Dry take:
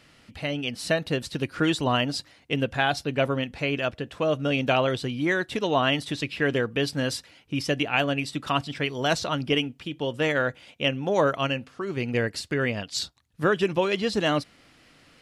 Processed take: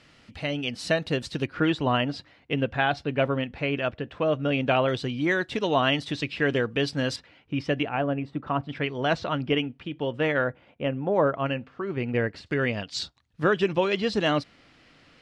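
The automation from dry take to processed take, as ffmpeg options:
ffmpeg -i in.wav -af "asetnsamples=nb_out_samples=441:pad=0,asendcmd='1.46 lowpass f 3000;4.89 lowpass f 6000;7.16 lowpass f 2700;7.89 lowpass f 1200;8.69 lowpass f 2700;10.44 lowpass f 1400;11.46 lowpass f 2400;12.46 lowpass f 5300',lowpass=7300" out.wav

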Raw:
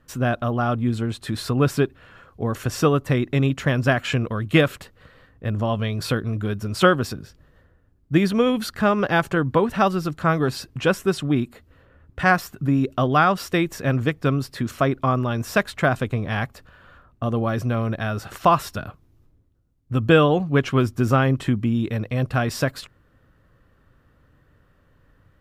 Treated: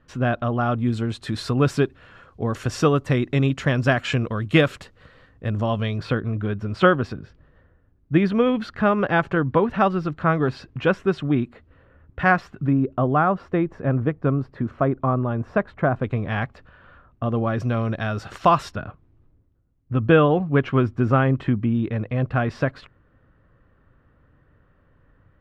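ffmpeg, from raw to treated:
ffmpeg -i in.wav -af "asetnsamples=nb_out_samples=441:pad=0,asendcmd='0.78 lowpass f 7300;5.98 lowpass f 2700;12.73 lowpass f 1200;16.04 lowpass f 2900;17.6 lowpass f 5800;18.72 lowpass f 2300',lowpass=3700" out.wav

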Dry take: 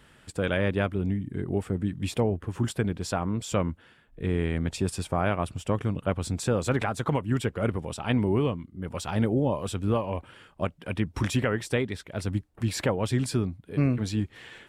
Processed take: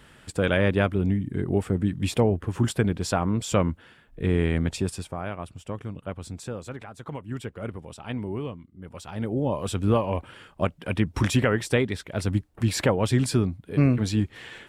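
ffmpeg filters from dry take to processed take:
ffmpeg -i in.wav -af "volume=22dB,afade=type=out:start_time=4.57:duration=0.59:silence=0.281838,afade=type=out:start_time=6.35:duration=0.5:silence=0.446684,afade=type=in:start_time=6.85:duration=0.5:silence=0.446684,afade=type=in:start_time=9.16:duration=0.65:silence=0.281838" out.wav

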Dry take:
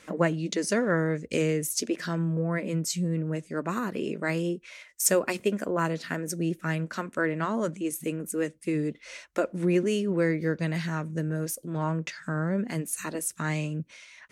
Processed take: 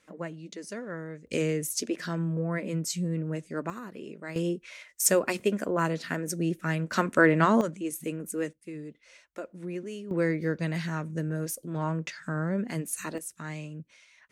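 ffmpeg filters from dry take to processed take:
ffmpeg -i in.wav -af "asetnsamples=nb_out_samples=441:pad=0,asendcmd='1.27 volume volume -2dB;3.7 volume volume -10.5dB;4.36 volume volume 0dB;6.92 volume volume 7dB;7.61 volume volume -2.5dB;8.53 volume volume -12dB;10.11 volume volume -1.5dB;13.18 volume volume -8.5dB',volume=-12.5dB" out.wav

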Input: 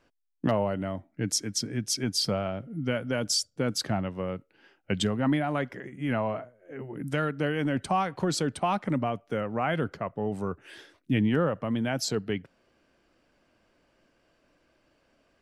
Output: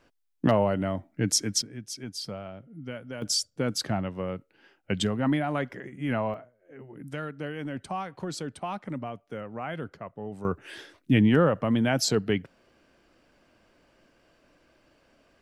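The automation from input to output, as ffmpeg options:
ffmpeg -i in.wav -af "asetnsamples=nb_out_samples=441:pad=0,asendcmd='1.62 volume volume -9dB;3.22 volume volume 0dB;6.34 volume volume -7dB;10.45 volume volume 4.5dB',volume=3.5dB" out.wav

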